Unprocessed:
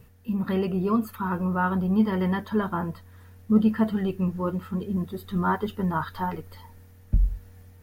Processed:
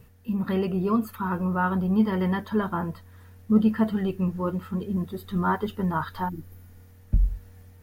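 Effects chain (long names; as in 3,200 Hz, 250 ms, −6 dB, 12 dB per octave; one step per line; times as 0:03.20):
healed spectral selection 0:06.31–0:06.83, 380–9,700 Hz after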